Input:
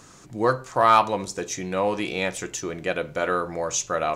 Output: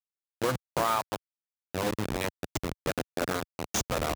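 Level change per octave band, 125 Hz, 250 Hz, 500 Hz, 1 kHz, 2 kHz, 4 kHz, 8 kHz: -1.5 dB, -4.5 dB, -8.0 dB, -10.0 dB, -7.0 dB, -3.5 dB, -6.5 dB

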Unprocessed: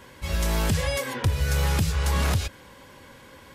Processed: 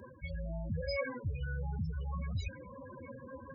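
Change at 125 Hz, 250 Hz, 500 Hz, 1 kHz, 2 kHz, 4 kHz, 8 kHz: -13.0 dB, -11.5 dB, -9.0 dB, -16.0 dB, -12.5 dB, -18.0 dB, under -30 dB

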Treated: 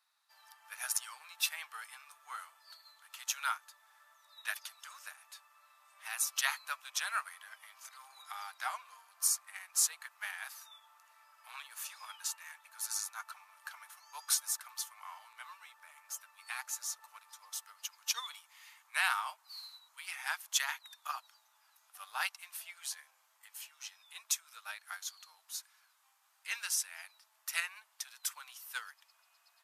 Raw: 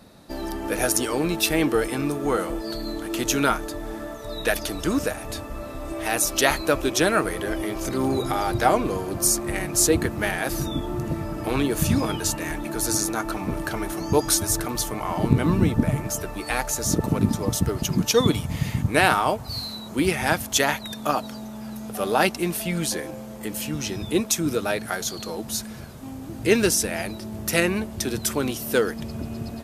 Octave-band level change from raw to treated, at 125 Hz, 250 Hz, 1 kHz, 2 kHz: under -40 dB, under -40 dB, -16.5 dB, -12.0 dB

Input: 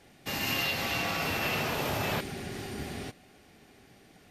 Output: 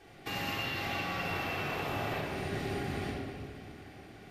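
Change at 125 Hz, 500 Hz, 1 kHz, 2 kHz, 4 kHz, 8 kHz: -1.0 dB, -2.0 dB, -1.5 dB, -4.0 dB, -6.0 dB, -10.5 dB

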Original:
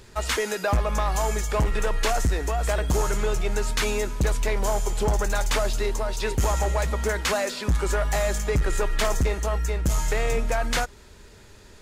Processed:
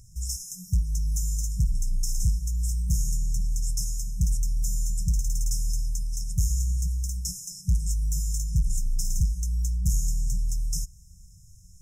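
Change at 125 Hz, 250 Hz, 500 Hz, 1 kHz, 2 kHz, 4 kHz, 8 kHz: 0.0 dB, -7.5 dB, under -40 dB, under -40 dB, under -40 dB, -10.0 dB, 0.0 dB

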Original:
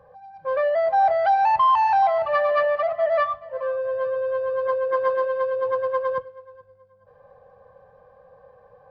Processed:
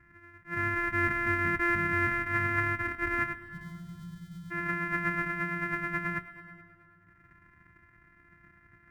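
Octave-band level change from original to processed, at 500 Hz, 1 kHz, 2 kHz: -20.5 dB, -14.5 dB, +4.0 dB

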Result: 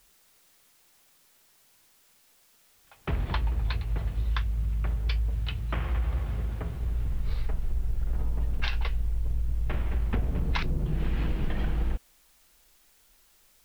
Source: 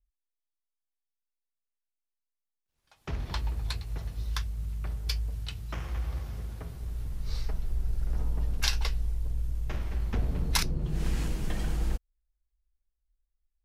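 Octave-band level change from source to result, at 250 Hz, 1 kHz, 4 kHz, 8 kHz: +3.0 dB, +3.0 dB, -4.5 dB, -15.0 dB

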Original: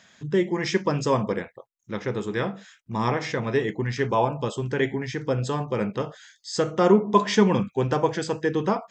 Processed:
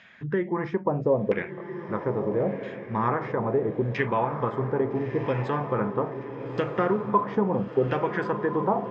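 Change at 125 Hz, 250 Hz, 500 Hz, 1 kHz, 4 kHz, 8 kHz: -2.5 dB, -3.0 dB, -1.5 dB, -0.5 dB, -14.0 dB, under -25 dB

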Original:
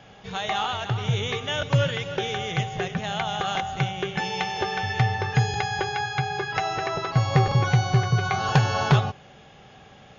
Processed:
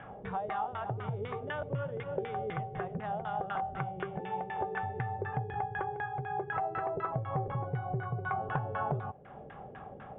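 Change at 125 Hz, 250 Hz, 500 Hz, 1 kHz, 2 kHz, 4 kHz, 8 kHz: -14.5 dB, -11.5 dB, -7.5 dB, -7.5 dB, -12.5 dB, -28.0 dB, no reading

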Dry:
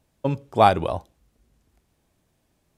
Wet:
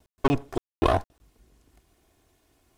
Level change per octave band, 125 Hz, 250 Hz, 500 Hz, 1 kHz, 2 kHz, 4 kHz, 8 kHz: -2.5 dB, +1.0 dB, -4.5 dB, -8.5 dB, -3.5 dB, -4.5 dB, no reading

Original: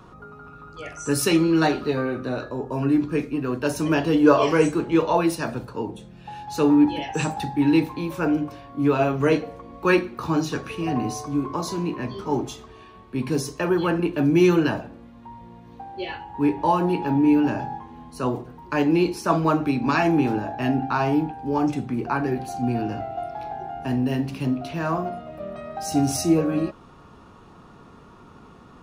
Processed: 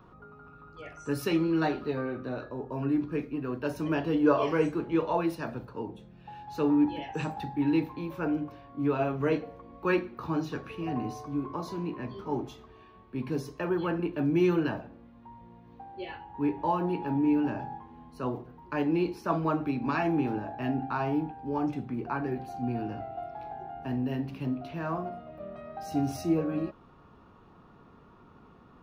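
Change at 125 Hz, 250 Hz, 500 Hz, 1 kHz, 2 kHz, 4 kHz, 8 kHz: -7.5 dB, -7.5 dB, -7.5 dB, -8.0 dB, -9.0 dB, -12.0 dB, under -15 dB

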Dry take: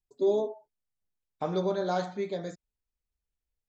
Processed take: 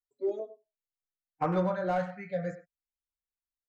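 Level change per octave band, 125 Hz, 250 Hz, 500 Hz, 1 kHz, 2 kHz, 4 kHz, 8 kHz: +3.0 dB, 0.0 dB, -3.5 dB, +1.5 dB, +2.5 dB, -10.5 dB, no reading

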